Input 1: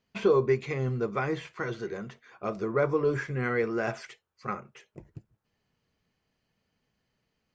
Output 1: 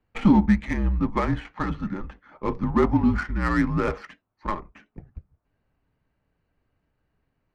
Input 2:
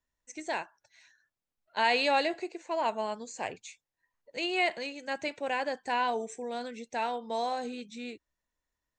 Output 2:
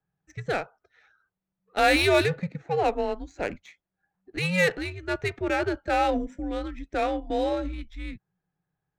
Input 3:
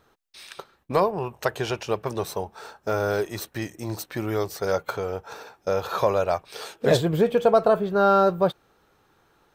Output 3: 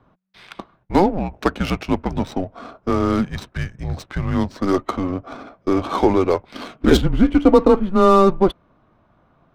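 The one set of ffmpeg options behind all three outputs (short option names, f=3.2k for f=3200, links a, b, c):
-af "afreqshift=-190,adynamicsmooth=sensitivity=6:basefreq=1.8k,volume=6dB"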